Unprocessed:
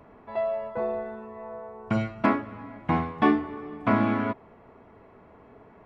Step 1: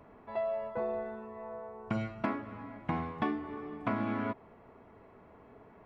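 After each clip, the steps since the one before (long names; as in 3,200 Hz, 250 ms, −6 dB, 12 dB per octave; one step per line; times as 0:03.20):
downward compressor 6 to 1, threshold −25 dBFS, peak gain reduction 9.5 dB
level −4 dB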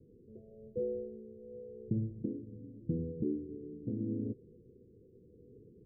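rotating-speaker cabinet horn 0.9 Hz
Chebyshev low-pass with heavy ripple 510 Hz, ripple 6 dB
level +4.5 dB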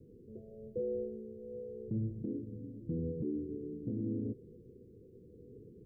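brickwall limiter −32.5 dBFS, peak gain reduction 9.5 dB
level +3.5 dB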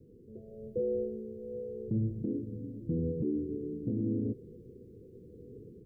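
automatic gain control gain up to 4.5 dB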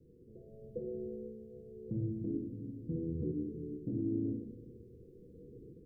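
rectangular room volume 140 cubic metres, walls mixed, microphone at 0.67 metres
level −6 dB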